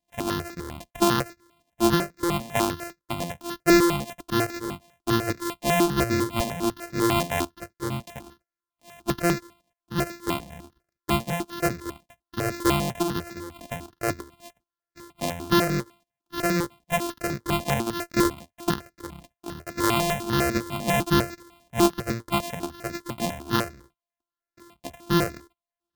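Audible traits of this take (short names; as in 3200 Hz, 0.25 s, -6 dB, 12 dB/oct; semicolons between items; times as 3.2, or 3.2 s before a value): a buzz of ramps at a fixed pitch in blocks of 128 samples; notches that jump at a steady rate 10 Hz 380–3100 Hz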